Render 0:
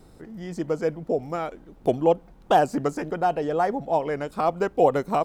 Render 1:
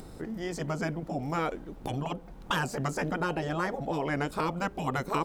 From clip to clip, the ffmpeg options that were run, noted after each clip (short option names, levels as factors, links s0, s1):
-filter_complex "[0:a]asplit=2[s0][s1];[s1]acompressor=threshold=0.0447:ratio=6,volume=1.19[s2];[s0][s2]amix=inputs=2:normalize=0,afftfilt=real='re*lt(hypot(re,im),0.398)':imag='im*lt(hypot(re,im),0.398)':win_size=1024:overlap=0.75,acompressor=mode=upward:threshold=0.00794:ratio=2.5,volume=0.794"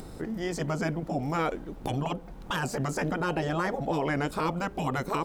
-af "alimiter=limit=0.0794:level=0:latency=1:release=21,volume=1.41"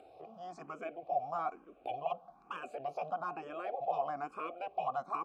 -filter_complex "[0:a]asplit=3[s0][s1][s2];[s0]bandpass=f=730:t=q:w=8,volume=1[s3];[s1]bandpass=f=1090:t=q:w=8,volume=0.501[s4];[s2]bandpass=f=2440:t=q:w=8,volume=0.355[s5];[s3][s4][s5]amix=inputs=3:normalize=0,asplit=2[s6][s7];[s7]afreqshift=1.1[s8];[s6][s8]amix=inputs=2:normalize=1,volume=1.68"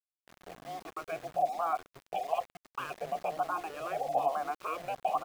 -filter_complex "[0:a]acrossover=split=320[s0][s1];[s1]adelay=270[s2];[s0][s2]amix=inputs=2:normalize=0,aresample=11025,aresample=44100,aeval=exprs='val(0)*gte(abs(val(0)),0.00335)':c=same,volume=1.78"